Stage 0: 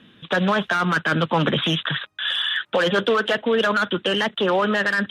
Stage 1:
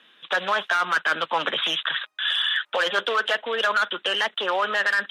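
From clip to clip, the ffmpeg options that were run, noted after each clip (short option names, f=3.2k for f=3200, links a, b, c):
-af "highpass=700"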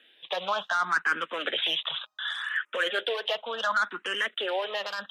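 -filter_complex "[0:a]asplit=2[a][b];[b]afreqshift=0.68[c];[a][c]amix=inputs=2:normalize=1,volume=-2.5dB"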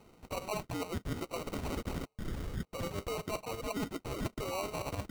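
-af "areverse,acompressor=threshold=-34dB:ratio=6,areverse,acrusher=samples=26:mix=1:aa=0.000001"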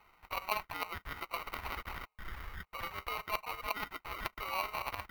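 -af "equalizer=f=125:t=o:w=1:g=-11,equalizer=f=250:t=o:w=1:g=-12,equalizer=f=500:t=o:w=1:g=-9,equalizer=f=1k:t=o:w=1:g=8,equalizer=f=2k:t=o:w=1:g=9,equalizer=f=8k:t=o:w=1:g=-12,equalizer=f=16k:t=o:w=1:g=7,aeval=exprs='0.126*(cos(1*acos(clip(val(0)/0.126,-1,1)))-cos(1*PI/2))+0.0282*(cos(3*acos(clip(val(0)/0.126,-1,1)))-cos(3*PI/2))':c=same,volume=5.5dB"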